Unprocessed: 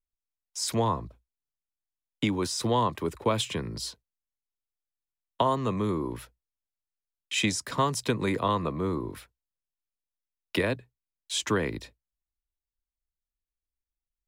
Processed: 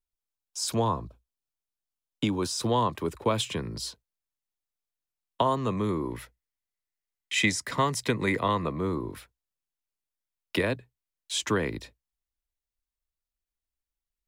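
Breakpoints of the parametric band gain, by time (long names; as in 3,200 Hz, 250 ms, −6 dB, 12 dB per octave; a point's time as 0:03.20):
parametric band 2,000 Hz 0.25 octaves
0:02.35 −10.5 dB
0:02.93 −2 dB
0:05.66 −2 dB
0:06.20 +10 dB
0:08.48 +10 dB
0:08.90 +0.5 dB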